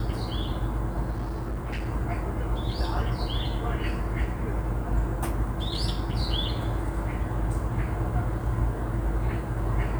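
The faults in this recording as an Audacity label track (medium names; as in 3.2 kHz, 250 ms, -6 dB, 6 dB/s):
1.100000	1.900000	clipped -27 dBFS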